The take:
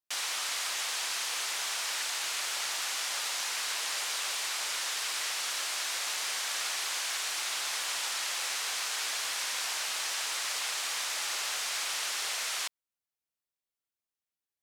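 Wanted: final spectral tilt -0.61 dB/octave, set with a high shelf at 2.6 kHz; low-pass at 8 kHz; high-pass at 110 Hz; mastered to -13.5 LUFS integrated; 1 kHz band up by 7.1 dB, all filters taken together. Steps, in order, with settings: high-pass 110 Hz; low-pass 8 kHz; peaking EQ 1 kHz +8 dB; treble shelf 2.6 kHz +4.5 dB; trim +14.5 dB

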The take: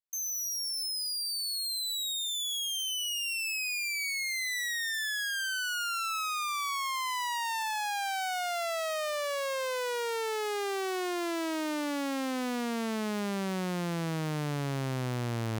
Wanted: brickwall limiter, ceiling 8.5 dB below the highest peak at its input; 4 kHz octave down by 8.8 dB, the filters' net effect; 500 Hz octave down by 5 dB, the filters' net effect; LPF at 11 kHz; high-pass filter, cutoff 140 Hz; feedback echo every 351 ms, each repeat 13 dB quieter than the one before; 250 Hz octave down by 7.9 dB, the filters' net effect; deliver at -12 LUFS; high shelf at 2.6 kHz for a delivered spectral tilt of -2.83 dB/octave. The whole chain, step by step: high-pass 140 Hz; low-pass 11 kHz; peaking EQ 250 Hz -9 dB; peaking EQ 500 Hz -3.5 dB; treble shelf 2.6 kHz -4 dB; peaking EQ 4 kHz -8 dB; peak limiter -34 dBFS; feedback delay 351 ms, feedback 22%, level -13 dB; trim +27 dB

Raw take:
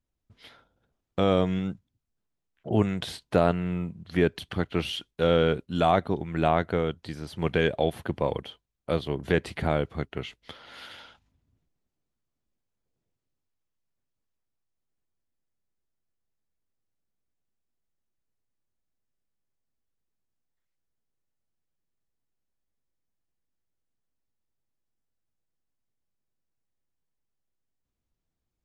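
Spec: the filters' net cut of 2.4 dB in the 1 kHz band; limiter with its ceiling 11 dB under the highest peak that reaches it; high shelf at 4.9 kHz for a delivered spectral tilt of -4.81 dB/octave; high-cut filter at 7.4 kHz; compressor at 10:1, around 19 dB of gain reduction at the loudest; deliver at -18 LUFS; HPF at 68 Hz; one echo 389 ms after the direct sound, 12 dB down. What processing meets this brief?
high-pass 68 Hz; low-pass 7.4 kHz; peaking EQ 1 kHz -3.5 dB; treble shelf 4.9 kHz -5.5 dB; compression 10:1, threshold -37 dBFS; peak limiter -32 dBFS; delay 389 ms -12 dB; trim +27.5 dB

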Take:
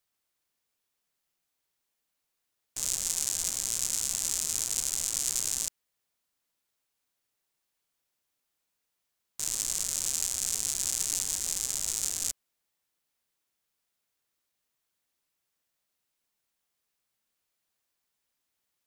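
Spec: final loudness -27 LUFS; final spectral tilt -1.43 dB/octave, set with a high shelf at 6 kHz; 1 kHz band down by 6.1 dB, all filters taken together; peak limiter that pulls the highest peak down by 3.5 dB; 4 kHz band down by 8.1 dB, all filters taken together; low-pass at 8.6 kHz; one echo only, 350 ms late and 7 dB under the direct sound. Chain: low-pass 8.6 kHz; peaking EQ 1 kHz -7.5 dB; peaking EQ 4 kHz -9 dB; treble shelf 6 kHz -3.5 dB; peak limiter -18.5 dBFS; delay 350 ms -7 dB; trim +9 dB

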